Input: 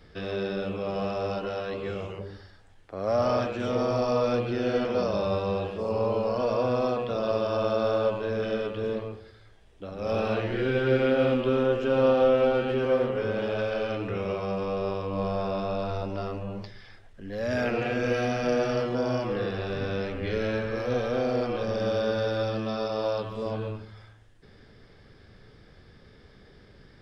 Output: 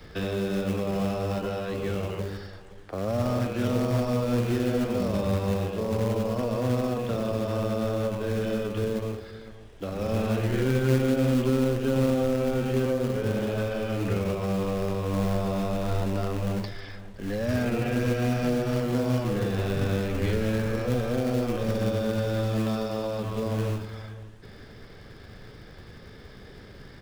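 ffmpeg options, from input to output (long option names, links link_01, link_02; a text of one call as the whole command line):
ffmpeg -i in.wav -filter_complex "[0:a]acrossover=split=270[link_01][link_02];[link_02]acompressor=threshold=-39dB:ratio=4[link_03];[link_01][link_03]amix=inputs=2:normalize=0,acrossover=split=410|2400[link_04][link_05][link_06];[link_04]acrusher=bits=3:mode=log:mix=0:aa=0.000001[link_07];[link_07][link_05][link_06]amix=inputs=3:normalize=0,asplit=2[link_08][link_09];[link_09]adelay=519,volume=-17dB,highshelf=frequency=4000:gain=-11.7[link_10];[link_08][link_10]amix=inputs=2:normalize=0,volume=7dB" out.wav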